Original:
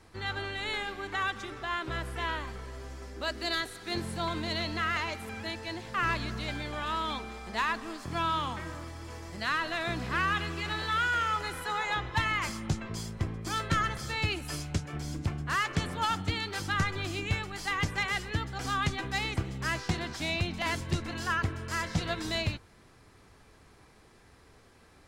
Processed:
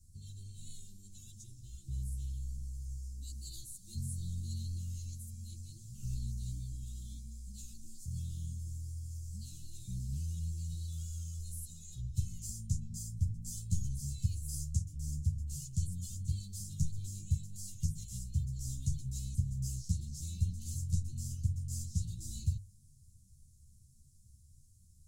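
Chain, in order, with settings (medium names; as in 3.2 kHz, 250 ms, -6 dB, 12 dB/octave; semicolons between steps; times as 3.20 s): elliptic band-stop 140–6900 Hz, stop band 60 dB; hum notches 50/100/150 Hz; three-phase chorus; trim +5 dB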